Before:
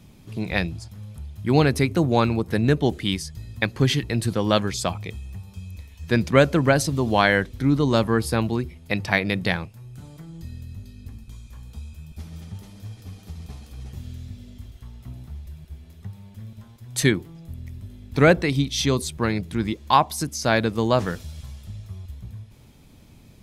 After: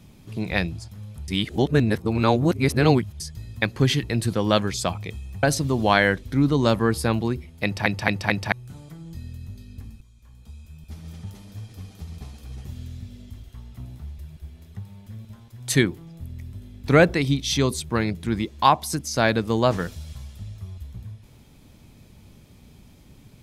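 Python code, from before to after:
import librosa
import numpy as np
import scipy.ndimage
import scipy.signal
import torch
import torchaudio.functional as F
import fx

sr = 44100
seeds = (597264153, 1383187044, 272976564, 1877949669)

y = fx.edit(x, sr, fx.reverse_span(start_s=1.28, length_s=1.92),
    fx.cut(start_s=5.43, length_s=1.28),
    fx.stutter_over(start_s=8.92, slice_s=0.22, count=4),
    fx.fade_in_from(start_s=11.29, length_s=1.18, floor_db=-15.5), tone=tone)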